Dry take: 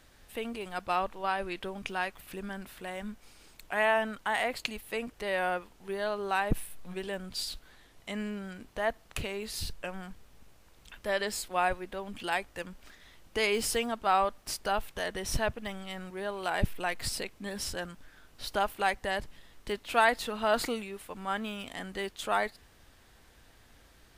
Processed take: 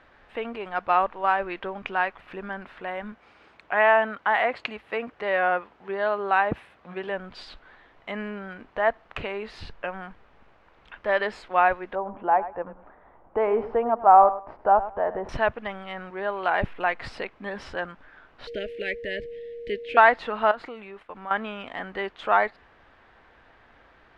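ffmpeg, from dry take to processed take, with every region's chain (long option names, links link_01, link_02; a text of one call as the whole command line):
ffmpeg -i in.wav -filter_complex "[0:a]asettb=1/sr,asplit=3[link_01][link_02][link_03];[link_01]atrim=end=3.124[link_04];[link_02]atrim=start=3.12:end=7.09,asetpts=PTS-STARTPTS,afade=type=in:duration=0.004:curve=qsin,afade=type=out:start_time=3.966:duration=0.004:curve=qsin,highpass=frequency=57:width=0.5412,highpass=frequency=57:width=1.3066,bandreject=frequency=920:width=29[link_05];[link_03]atrim=start=7.086[link_06];[link_04][link_05]acrossfade=duration=0.004:curve1=hsin:curve2=qsin[link_07];[link_07][link_06]acrossfade=duration=0.004:curve1=qsin:curve2=hsin,asettb=1/sr,asplit=3[link_08][link_09][link_10];[link_08]atrim=end=11.954[link_11];[link_09]atrim=start=11.95:end=15.29,asetpts=PTS-STARTPTS,afade=type=in:duration=0.004:curve=qsin,afade=type=out:start_time=3.336:duration=0.004:curve=qsin,lowpass=frequency=850:width_type=q:width=1.7,aecho=1:1:103|206:0.2|0.0399,atrim=end_sample=147294[link_12];[link_10]atrim=start=15.286[link_13];[link_11][link_12]acrossfade=duration=0.004:curve1=hsin:curve2=qsin[link_14];[link_14][link_13]acrossfade=duration=0.004:curve1=qsin:curve2=hsin,asettb=1/sr,asplit=3[link_15][link_16][link_17];[link_15]atrim=end=18.474[link_18];[link_16]atrim=start=18.47:end=19.97,asetpts=PTS-STARTPTS,afade=type=in:duration=0.004:curve=qsin,afade=type=out:start_time=1.496:duration=0.004:curve=qsin,aeval=exprs='val(0)+0.01*sin(2*PI*470*n/s)':channel_layout=same,asuperstop=centerf=1000:order=8:qfactor=0.73[link_19];[link_17]atrim=start=19.966[link_20];[link_18][link_19]acrossfade=duration=0.004:curve1=hsin:curve2=qsin[link_21];[link_21][link_20]acrossfade=duration=0.004:curve1=qsin:curve2=hsin,asettb=1/sr,asplit=3[link_22][link_23][link_24];[link_22]atrim=end=20.514[link_25];[link_23]atrim=start=20.51:end=21.31,asetpts=PTS-STARTPTS,afade=type=in:duration=0.004:curve=qsin,afade=type=out:start_time=0.796:duration=0.004:curve=qsin,agate=range=-12dB:threshold=-48dB:ratio=16:release=100:detection=peak,acompressor=threshold=-42dB:ratio=3:attack=3.2:release=140:knee=1:detection=peak[link_26];[link_24]atrim=start=21.306[link_27];[link_25][link_26]acrossfade=duration=0.004:curve1=hsin:curve2=qsin[link_28];[link_28][link_27]acrossfade=duration=0.004:curve1=qsin:curve2=hsin,lowpass=2600,equalizer=frequency=1100:width=0.3:gain=13,volume=-3.5dB" out.wav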